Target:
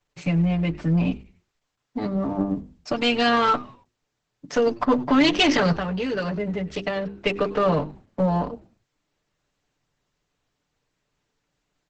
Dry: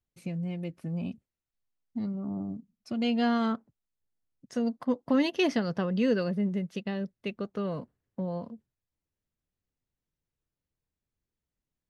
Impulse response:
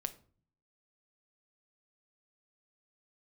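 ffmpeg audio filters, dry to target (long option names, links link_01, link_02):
-filter_complex "[0:a]asettb=1/sr,asplit=3[link_01][link_02][link_03];[link_01]atrim=end=2.954[link_04];[link_02]atrim=start=2.95:end=3.54,asetpts=PTS-STARTPTS,afade=type=in:duration=0.004:curve=qsin,afade=type=out:start_time=0.586:duration=0.004:curve=qsin,equalizer=frequency=610:width=1.1:gain=-8[link_05];[link_03]atrim=start=3.536[link_06];[link_04][link_05]acrossfade=duration=0.004:curve1=hsin:curve2=qsin[link_07];[link_07][link_06]acrossfade=duration=0.004:curve1=qsin:curve2=hsin,bandreject=frequency=50:width_type=h:width=6,bandreject=frequency=100:width_type=h:width=6,bandreject=frequency=150:width_type=h:width=6,bandreject=frequency=200:width_type=h:width=6,bandreject=frequency=250:width_type=h:width=6,bandreject=frequency=300:width_type=h:width=6,bandreject=frequency=350:width_type=h:width=6,bandreject=frequency=400:width_type=h:width=6,aecho=1:1:6.8:0.93,acrossover=split=190|2100[link_08][link_09][link_10];[link_09]alimiter=level_in=0.5dB:limit=-24dB:level=0:latency=1:release=17,volume=-0.5dB[link_11];[link_08][link_11][link_10]amix=inputs=3:normalize=0,asplit=3[link_12][link_13][link_14];[link_12]afade=type=out:start_time=5.75:duration=0.02[link_15];[link_13]acompressor=threshold=-35dB:ratio=10,afade=type=in:start_time=5.75:duration=0.02,afade=type=out:start_time=7.12:duration=0.02[link_16];[link_14]afade=type=in:start_time=7.12:duration=0.02[link_17];[link_15][link_16][link_17]amix=inputs=3:normalize=0,asplit=2[link_18][link_19];[link_19]highpass=frequency=720:poles=1,volume=10dB,asoftclip=type=tanh:threshold=-17dB[link_20];[link_18][link_20]amix=inputs=2:normalize=0,lowpass=frequency=2400:poles=1,volume=-6dB,asplit=2[link_21][link_22];[link_22]aeval=exprs='clip(val(0),-1,0.01)':channel_layout=same,volume=-3dB[link_23];[link_21][link_23]amix=inputs=2:normalize=0,asplit=4[link_24][link_25][link_26][link_27];[link_25]adelay=96,afreqshift=-120,volume=-21dB[link_28];[link_26]adelay=192,afreqshift=-240,volume=-30.4dB[link_29];[link_27]adelay=288,afreqshift=-360,volume=-39.7dB[link_30];[link_24][link_28][link_29][link_30]amix=inputs=4:normalize=0,volume=8.5dB" -ar 48000 -c:a libopus -b:a 10k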